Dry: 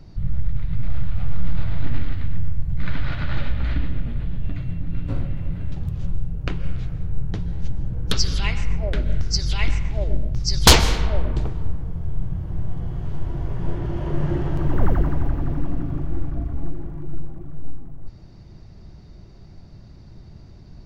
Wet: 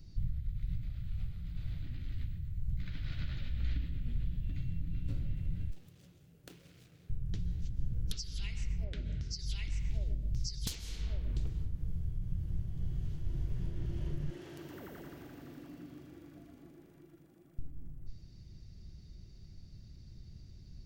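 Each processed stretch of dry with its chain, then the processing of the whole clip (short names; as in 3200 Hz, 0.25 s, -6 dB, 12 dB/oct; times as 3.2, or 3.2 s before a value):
5.7–7.1 median filter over 25 samples + HPF 410 Hz
8.84–9.39 HPF 98 Hz 6 dB/oct + air absorption 89 m
14.3–17.59 HPF 370 Hz + echo 0.116 s -6 dB
whole clip: tilt +2.5 dB/oct; compressor, threshold -30 dBFS; passive tone stack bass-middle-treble 10-0-1; gain +10.5 dB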